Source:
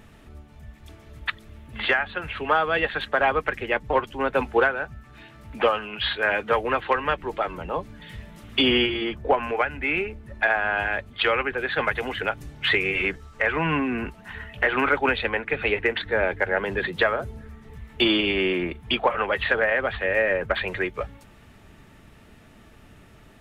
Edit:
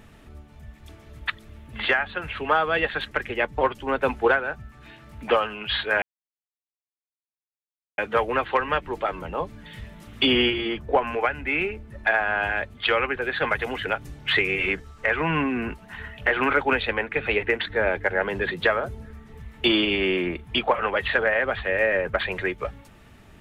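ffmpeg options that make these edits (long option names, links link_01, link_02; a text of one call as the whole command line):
ffmpeg -i in.wav -filter_complex "[0:a]asplit=3[link_01][link_02][link_03];[link_01]atrim=end=3.112[link_04];[link_02]atrim=start=3.428:end=6.34,asetpts=PTS-STARTPTS,afade=type=out:start_time=2.908:duration=0.004:curve=hsin,apad=pad_dur=1.96[link_05];[link_03]atrim=start=6.34,asetpts=PTS-STARTPTS,afade=type=in:duration=0.004:curve=hsin[link_06];[link_05][link_06]concat=n=2:v=0:a=1[link_07];[link_04][link_07]acrossfade=duration=0.004:curve1=hsin:curve2=hsin" out.wav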